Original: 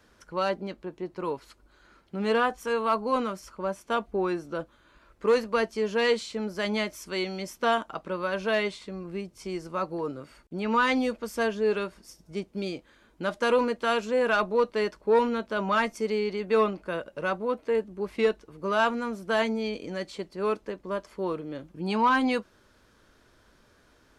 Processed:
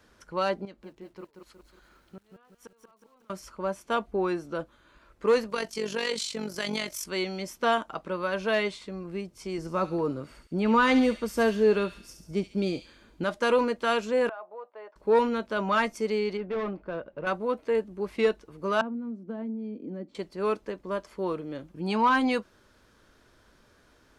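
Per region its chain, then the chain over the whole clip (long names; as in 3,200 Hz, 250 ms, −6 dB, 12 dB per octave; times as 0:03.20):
0:00.65–0:03.30: gate with flip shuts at −24 dBFS, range −36 dB + downward compressor 1.5 to 1, threshold −60 dBFS + feedback echo at a low word length 183 ms, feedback 55%, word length 11 bits, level −6 dB
0:05.50–0:07.06: high-shelf EQ 2,600 Hz +12 dB + downward compressor 4 to 1, threshold −23 dBFS + amplitude modulation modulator 47 Hz, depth 50%
0:09.58–0:13.24: low-shelf EQ 470 Hz +6.5 dB + delay with a high-pass on its return 69 ms, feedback 55%, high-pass 2,600 Hz, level −7 dB
0:14.29–0:14.96: four-pole ladder band-pass 820 Hz, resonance 50% + downward compressor 2 to 1, threshold −40 dBFS
0:16.37–0:17.27: hard clipping −26 dBFS + head-to-tape spacing loss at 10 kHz 31 dB
0:18.81–0:20.15: resonant band-pass 250 Hz, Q 3.1 + multiband upward and downward compressor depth 100%
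whole clip: no processing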